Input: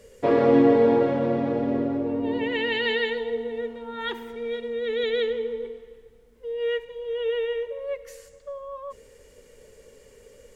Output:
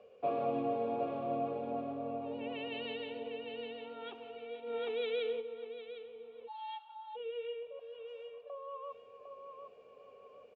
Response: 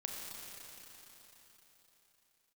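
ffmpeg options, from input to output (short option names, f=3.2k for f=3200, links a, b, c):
-filter_complex "[0:a]asettb=1/sr,asplit=3[a][b][c];[a]atrim=end=7.794[d];[b]atrim=start=7.79:end=8.5,asetpts=PTS-STARTPTS,afade=t=in:d=0.004:c=qsin,afade=t=out:st=0.706:d=0.004:c=qsin,aeval=exprs='(tanh(398*val(0)+0.65)-tanh(0.65))/398':c=same[e];[c]atrim=start=8.496[f];[d][e]acrossfade=d=0.004:c1=hsin:c2=qsin[g];[g][f]acrossfade=d=0.004:c1=qsin:c2=hsin,asplit=2[h][i];[i]aecho=0:1:422:0.126[j];[h][j]amix=inputs=2:normalize=0,acrossover=split=180|3000[k][l][m];[l]acompressor=threshold=-53dB:ratio=1.5[n];[k][n][m]amix=inputs=3:normalize=0,asplit=3[o][p][q];[o]bandpass=f=730:t=q:w=8,volume=0dB[r];[p]bandpass=f=1.09k:t=q:w=8,volume=-6dB[s];[q]bandpass=f=2.44k:t=q:w=8,volume=-9dB[t];[r][s][t]amix=inputs=3:normalize=0,asplit=2[u][v];[v]aecho=0:1:755|1510|2265|3020:0.501|0.155|0.0482|0.0149[w];[u][w]amix=inputs=2:normalize=0,asplit=3[x][y][z];[x]afade=t=out:st=4.66:d=0.02[aa];[y]acontrast=65,afade=t=in:st=4.66:d=0.02,afade=t=out:st=5.4:d=0.02[ab];[z]afade=t=in:st=5.4:d=0.02[ac];[aa][ab][ac]amix=inputs=3:normalize=0,highpass=110,lowpass=3.9k,asplit=3[ad][ae][af];[ad]afade=t=out:st=6.47:d=0.02[ag];[ae]afreqshift=400,afade=t=in:st=6.47:d=0.02,afade=t=out:st=7.15:d=0.02[ah];[af]afade=t=in:st=7.15:d=0.02[ai];[ag][ah][ai]amix=inputs=3:normalize=0,lowshelf=f=260:g=11.5,volume=6dB"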